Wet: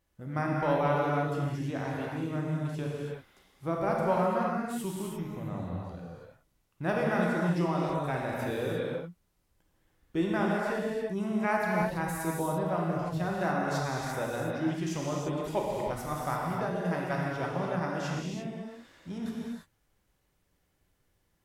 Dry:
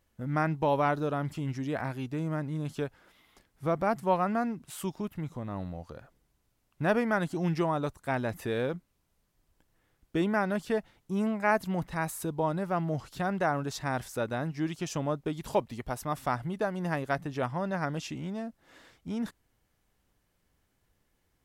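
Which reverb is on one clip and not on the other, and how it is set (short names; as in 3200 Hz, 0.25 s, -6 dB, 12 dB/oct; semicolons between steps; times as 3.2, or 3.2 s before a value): non-linear reverb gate 0.37 s flat, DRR -3.5 dB; gain -5 dB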